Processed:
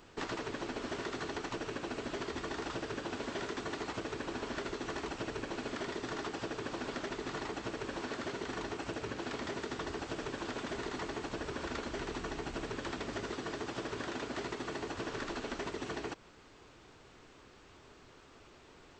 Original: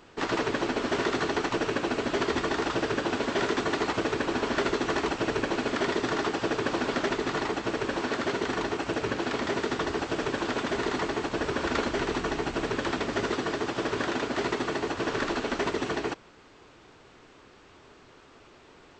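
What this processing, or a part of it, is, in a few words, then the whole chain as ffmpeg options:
ASMR close-microphone chain: -af "lowshelf=f=110:g=6,acompressor=threshold=-31dB:ratio=6,highshelf=f=6.2k:g=6.5,volume=-5dB"

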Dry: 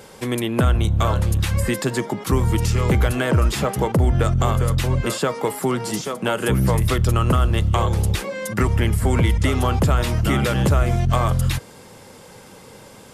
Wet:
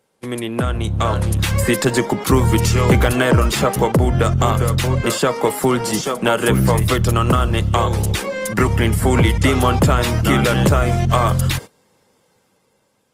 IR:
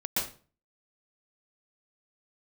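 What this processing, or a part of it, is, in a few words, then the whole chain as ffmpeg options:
video call: -af "highpass=f=110:p=1,dynaudnorm=f=300:g=7:m=14.5dB,agate=range=-20dB:threshold=-27dB:ratio=16:detection=peak,volume=-1dB" -ar 48000 -c:a libopus -b:a 24k

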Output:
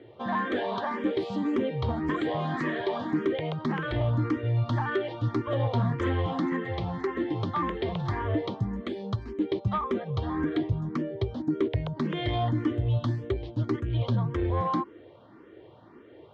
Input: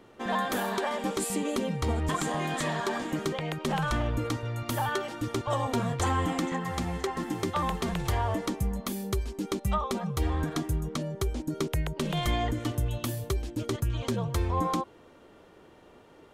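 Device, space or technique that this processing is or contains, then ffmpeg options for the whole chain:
barber-pole phaser into a guitar amplifier: -filter_complex "[0:a]asplit=2[a][b];[b]afreqshift=1.8[c];[a][c]amix=inputs=2:normalize=1,asoftclip=type=tanh:threshold=-24dB,highpass=94,equalizer=f=110:t=q:w=4:g=9,equalizer=f=180:t=q:w=4:g=-4,equalizer=f=330:t=q:w=4:g=5,equalizer=f=810:t=q:w=4:g=-4,equalizer=f=1.4k:t=q:w=4:g=-4,equalizer=f=2.6k:t=q:w=4:g=-8,lowpass=f=3.5k:w=0.5412,lowpass=f=3.5k:w=1.3066,volume=5.5dB"

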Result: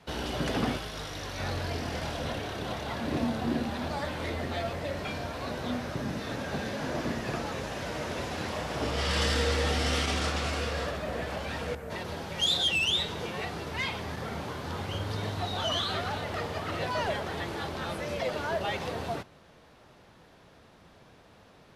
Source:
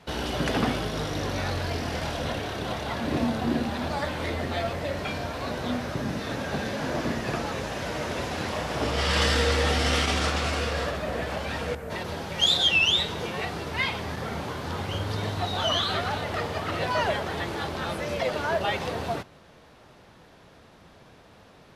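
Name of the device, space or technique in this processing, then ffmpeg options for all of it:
one-band saturation: -filter_complex "[0:a]acrossover=split=580|3500[a][b][c];[b]asoftclip=type=tanh:threshold=-24dB[d];[a][d][c]amix=inputs=3:normalize=0,asettb=1/sr,asplit=3[e][f][g];[e]atrim=end=0.774[h];[f]atrim=start=0.77:end=1.4,asetpts=PTS-STARTPTS,afade=t=in:d=0.004:c=qsin,afade=t=out:st=0.626:d=0.004:c=qsin,equalizer=f=230:w=0.35:g=-9[i];[g]atrim=start=1.396[j];[h][i]acrossfade=d=0.004:c1=hsin:c2=qsin[k];[k][j]acrossfade=d=0.004:c1=qsin:c2=hsin,volume=-3.5dB"

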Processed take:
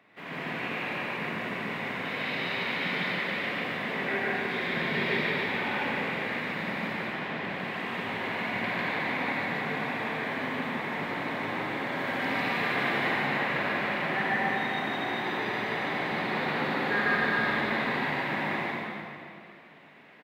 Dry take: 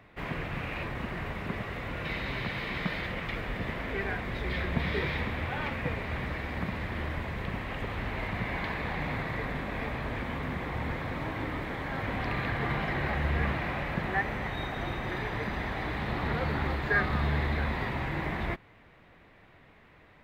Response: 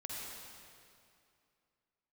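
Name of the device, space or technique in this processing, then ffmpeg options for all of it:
stadium PA: -filter_complex "[0:a]asettb=1/sr,asplit=3[a][b][c];[a]atrim=end=6.934[d];[b]atrim=start=6.93:end=7.44,asetpts=PTS-STARTPTS,afade=t=in:d=0.004:c=qsin,afade=t=out:st=0.506:d=0.004:c=qsin,lowpass=5k[e];[c]atrim=start=7.436[f];[d][e]acrossfade=d=0.004:c1=hsin:c2=qsin[g];[g][f]acrossfade=d=0.004:c1=qsin:c2=hsin,asettb=1/sr,asplit=3[h][i][j];[h]atrim=end=11.904[k];[i]atrim=start=11.9:end=13,asetpts=PTS-STARTPTS,afade=t=in:d=0.004:c=qsin,afade=t=out:st=1.096:d=0.004:c=qsin,highshelf=f=4.4k:g=6[l];[j]atrim=start=12.996[m];[k][l]acrossfade=d=0.004:c1=hsin:c2=qsin[n];[n][m]acrossfade=d=0.004:c1=qsin:c2=hsin,highpass=f=170:w=0.5412,highpass=f=170:w=1.3066,equalizer=f=2.9k:t=o:w=1.5:g=3.5,aecho=1:1:148.7|236.2:1|0.355[o];[1:a]atrim=start_sample=2205[p];[o][p]afir=irnorm=-1:irlink=0"

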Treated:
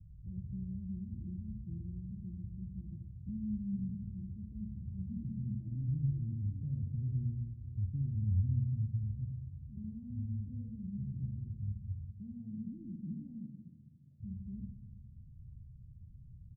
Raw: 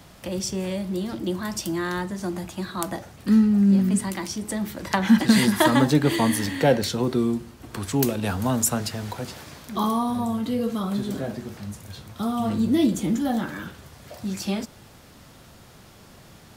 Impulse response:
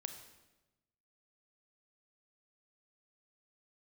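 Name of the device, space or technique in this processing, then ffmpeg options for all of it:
club heard from the street: -filter_complex "[0:a]asettb=1/sr,asplit=3[a][b][c];[a]atrim=end=12.044[d];[b]atrim=start=12.04:end=14.2,asetpts=PTS-STARTPTS,afade=t=in:d=0.004:c=qsin,afade=t=out:st=2.156:d=0.004:c=qsin,highpass=f=170:w=0.5412,highpass=f=170:w=1.3066[e];[c]atrim=start=14.196[f];[d][e]acrossfade=d=0.004:c1=hsin:c2=qsin[g];[g][f]acrossfade=d=0.004:c1=qsin:c2=hsin,aecho=1:1:79:0.447,alimiter=limit=-17dB:level=0:latency=1:release=20,lowpass=f=120:w=0.5412,lowpass=f=120:w=1.3066[h];[1:a]atrim=start_sample=2205[i];[h][i]afir=irnorm=-1:irlink=0,volume=5dB"

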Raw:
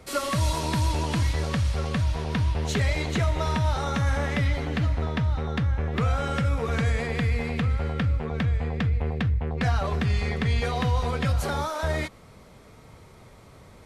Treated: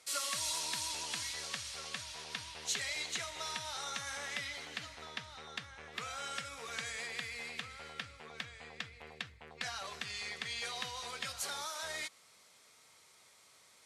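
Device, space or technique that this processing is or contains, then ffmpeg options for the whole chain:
piezo pickup straight into a mixer: -af "lowpass=8.4k,aderivative,volume=3dB"

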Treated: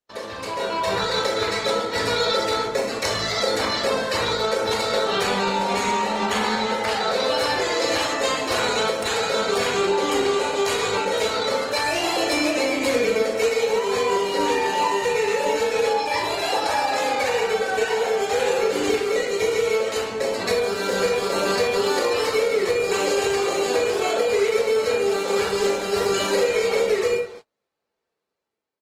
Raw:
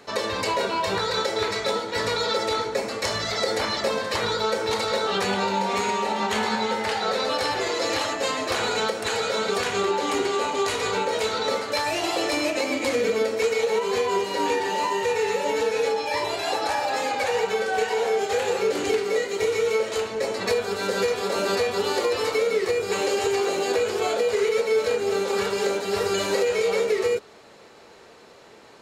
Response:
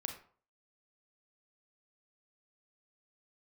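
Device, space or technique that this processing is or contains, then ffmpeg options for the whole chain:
speakerphone in a meeting room: -filter_complex "[0:a]highshelf=f=9.4k:g=3.5[a];[1:a]atrim=start_sample=2205[b];[a][b]afir=irnorm=-1:irlink=0,asplit=2[c][d];[d]adelay=160,highpass=300,lowpass=3.4k,asoftclip=type=hard:threshold=-21.5dB,volume=-20dB[e];[c][e]amix=inputs=2:normalize=0,dynaudnorm=f=160:g=9:m=9.5dB,agate=range=-36dB:threshold=-33dB:ratio=16:detection=peak,volume=-5.5dB" -ar 48000 -c:a libopus -b:a 20k

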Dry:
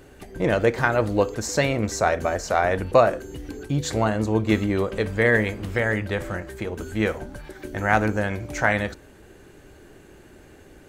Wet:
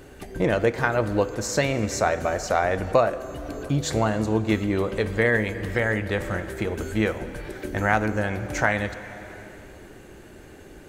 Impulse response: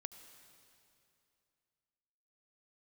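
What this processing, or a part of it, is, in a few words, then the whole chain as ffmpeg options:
ducked reverb: -filter_complex "[0:a]asplit=3[a][b][c];[1:a]atrim=start_sample=2205[d];[b][d]afir=irnorm=-1:irlink=0[e];[c]apad=whole_len=479837[f];[e][f]sidechaincompress=threshold=-23dB:ratio=8:attack=47:release=927,volume=12.5dB[g];[a][g]amix=inputs=2:normalize=0,volume=-8dB"

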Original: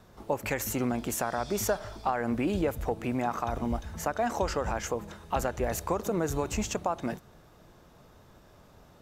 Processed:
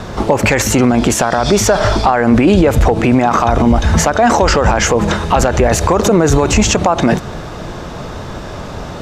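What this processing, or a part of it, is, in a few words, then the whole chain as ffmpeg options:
loud club master: -af "acompressor=threshold=-33dB:ratio=1.5,asoftclip=type=hard:threshold=-21.5dB,alimiter=level_in=31dB:limit=-1dB:release=50:level=0:latency=1,lowpass=6.9k,volume=-1dB"

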